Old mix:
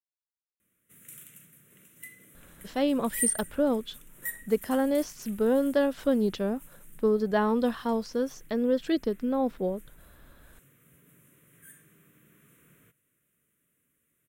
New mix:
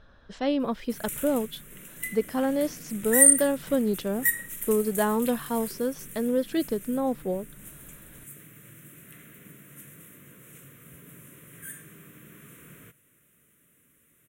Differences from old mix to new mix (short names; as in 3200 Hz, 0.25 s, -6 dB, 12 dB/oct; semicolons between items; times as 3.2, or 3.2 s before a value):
speech: entry -2.35 s; background +11.0 dB